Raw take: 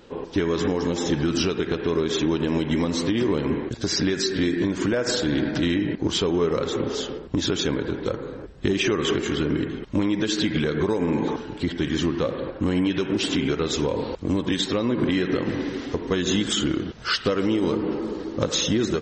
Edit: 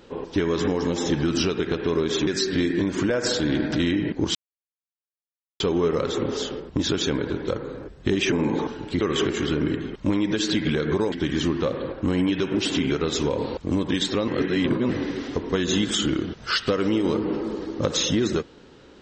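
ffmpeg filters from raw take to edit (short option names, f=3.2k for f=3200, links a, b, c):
-filter_complex "[0:a]asplit=8[a][b][c][d][e][f][g][h];[a]atrim=end=2.272[i];[b]atrim=start=4.098:end=6.18,asetpts=PTS-STARTPTS,afade=t=out:st=2.078:d=0.004:c=hsin,apad=pad_dur=1.25[j];[c]atrim=start=6.18:end=8.902,asetpts=PTS-STARTPTS,afade=t=in:d=0.004:c=hsin[k];[d]atrim=start=11.008:end=11.702[l];[e]atrim=start=8.898:end=11.012[m];[f]atrim=start=11.698:end=14.862[n];[g]atrim=start=14.858:end=15.472,asetpts=PTS-STARTPTS,areverse[o];[h]atrim=start=15.468[p];[j][k]concat=n=2:v=0:a=1[q];[i][q]acrossfade=d=0.004:c1=hsin:c2=hsin[r];[r][l]acrossfade=d=0.004:c1=hsin:c2=hsin[s];[s][m]acrossfade=d=0.004:c1=hsin:c2=hsin[t];[t][n]acrossfade=d=0.004:c1=hsin:c2=hsin[u];[u][o]acrossfade=d=0.004:c1=hsin:c2=hsin[v];[v][p]acrossfade=d=0.004:c1=hsin:c2=hsin"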